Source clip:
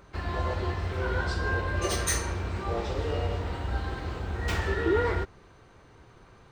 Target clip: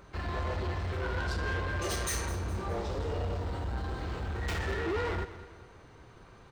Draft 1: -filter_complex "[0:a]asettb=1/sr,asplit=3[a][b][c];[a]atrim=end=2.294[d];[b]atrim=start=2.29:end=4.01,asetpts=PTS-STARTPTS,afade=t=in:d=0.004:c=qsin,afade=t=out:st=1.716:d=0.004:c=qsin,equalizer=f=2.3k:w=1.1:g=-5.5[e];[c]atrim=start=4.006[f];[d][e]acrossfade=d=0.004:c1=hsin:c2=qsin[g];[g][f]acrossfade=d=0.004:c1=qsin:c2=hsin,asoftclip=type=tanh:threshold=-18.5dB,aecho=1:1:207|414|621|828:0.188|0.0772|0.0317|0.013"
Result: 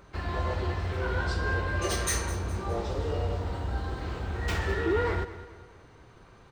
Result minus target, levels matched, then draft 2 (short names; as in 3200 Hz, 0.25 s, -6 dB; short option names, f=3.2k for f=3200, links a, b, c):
soft clip: distortion -12 dB
-filter_complex "[0:a]asettb=1/sr,asplit=3[a][b][c];[a]atrim=end=2.294[d];[b]atrim=start=2.29:end=4.01,asetpts=PTS-STARTPTS,afade=t=in:d=0.004:c=qsin,afade=t=out:st=1.716:d=0.004:c=qsin,equalizer=f=2.3k:w=1.1:g=-5.5[e];[c]atrim=start=4.006[f];[d][e]acrossfade=d=0.004:c1=hsin:c2=qsin[g];[g][f]acrossfade=d=0.004:c1=qsin:c2=hsin,asoftclip=type=tanh:threshold=-29dB,aecho=1:1:207|414|621|828:0.188|0.0772|0.0317|0.013"